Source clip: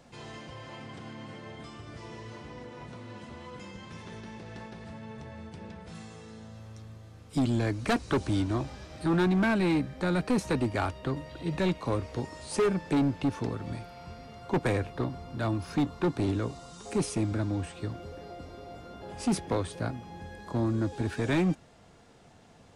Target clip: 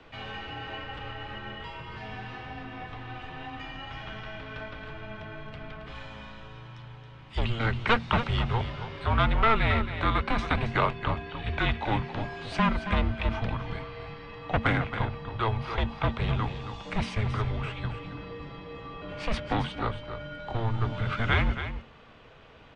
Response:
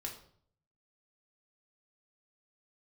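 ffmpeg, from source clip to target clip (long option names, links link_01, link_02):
-filter_complex "[0:a]highpass=53,equalizer=frequency=1300:width_type=o:width=1.5:gain=7,acrossover=split=240|810[link_01][link_02][link_03];[link_02]aeval=exprs='clip(val(0),-1,0.00891)':channel_layout=same[link_04];[link_01][link_04][link_03]amix=inputs=3:normalize=0,lowpass=frequency=3200:width_type=q:width=2.3,afreqshift=-230,aecho=1:1:273:0.316,volume=1dB"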